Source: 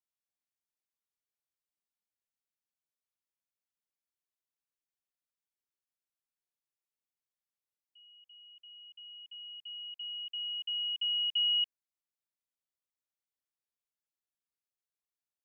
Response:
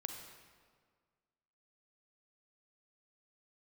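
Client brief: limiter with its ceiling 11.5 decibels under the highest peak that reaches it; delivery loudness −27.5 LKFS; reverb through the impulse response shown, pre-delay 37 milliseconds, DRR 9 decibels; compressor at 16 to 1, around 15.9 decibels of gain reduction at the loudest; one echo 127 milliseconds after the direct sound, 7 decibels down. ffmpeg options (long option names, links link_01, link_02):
-filter_complex "[0:a]acompressor=threshold=-43dB:ratio=16,alimiter=level_in=24dB:limit=-24dB:level=0:latency=1,volume=-24dB,aecho=1:1:127:0.447,asplit=2[link_01][link_02];[1:a]atrim=start_sample=2205,adelay=37[link_03];[link_02][link_03]afir=irnorm=-1:irlink=0,volume=-7.5dB[link_04];[link_01][link_04]amix=inputs=2:normalize=0,volume=21.5dB"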